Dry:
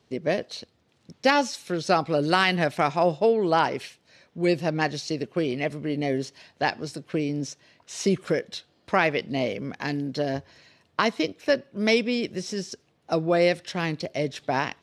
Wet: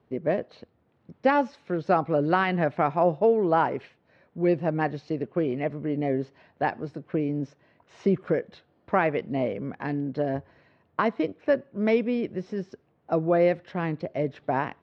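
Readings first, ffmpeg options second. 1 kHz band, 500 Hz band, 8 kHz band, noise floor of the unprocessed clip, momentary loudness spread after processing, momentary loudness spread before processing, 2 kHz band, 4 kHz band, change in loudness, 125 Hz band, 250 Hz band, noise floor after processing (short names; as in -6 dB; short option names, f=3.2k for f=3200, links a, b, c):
-0.5 dB, 0.0 dB, under -25 dB, -66 dBFS, 10 LU, 13 LU, -5.0 dB, -15.0 dB, -1.0 dB, 0.0 dB, 0.0 dB, -67 dBFS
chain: -af "lowpass=1.5k"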